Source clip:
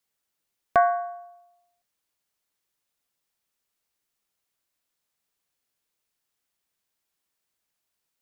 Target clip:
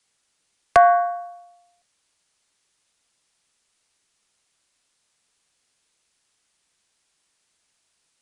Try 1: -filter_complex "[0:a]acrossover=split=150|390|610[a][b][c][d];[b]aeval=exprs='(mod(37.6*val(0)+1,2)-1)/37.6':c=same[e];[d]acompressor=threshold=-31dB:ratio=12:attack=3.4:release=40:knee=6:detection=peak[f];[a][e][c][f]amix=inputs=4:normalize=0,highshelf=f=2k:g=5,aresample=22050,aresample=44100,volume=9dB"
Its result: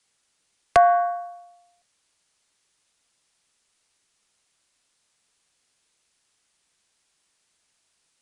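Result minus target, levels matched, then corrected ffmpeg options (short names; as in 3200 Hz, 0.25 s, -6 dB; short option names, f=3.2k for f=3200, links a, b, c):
compressor: peak gain reduction +6 dB
-filter_complex "[0:a]acrossover=split=150|390|610[a][b][c][d];[b]aeval=exprs='(mod(37.6*val(0)+1,2)-1)/37.6':c=same[e];[d]acompressor=threshold=-24.5dB:ratio=12:attack=3.4:release=40:knee=6:detection=peak[f];[a][e][c][f]amix=inputs=4:normalize=0,highshelf=f=2k:g=5,aresample=22050,aresample=44100,volume=9dB"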